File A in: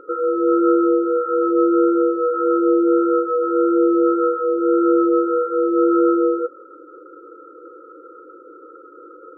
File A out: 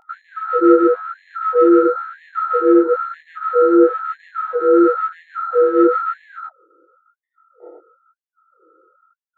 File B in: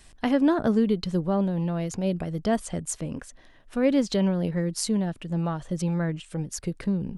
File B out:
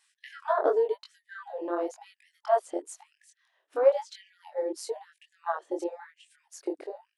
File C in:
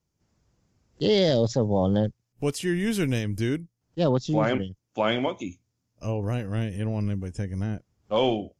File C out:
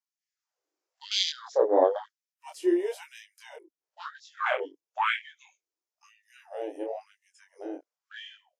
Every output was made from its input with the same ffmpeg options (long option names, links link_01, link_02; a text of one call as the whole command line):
ffmpeg -i in.wav -af "afwtdn=0.0316,flanger=delay=19.5:depth=5.4:speed=0.97,afftfilt=real='re*gte(b*sr/1024,260*pow(1700/260,0.5+0.5*sin(2*PI*1*pts/sr)))':imag='im*gte(b*sr/1024,260*pow(1700/260,0.5+0.5*sin(2*PI*1*pts/sr)))':win_size=1024:overlap=0.75,volume=7.5dB" out.wav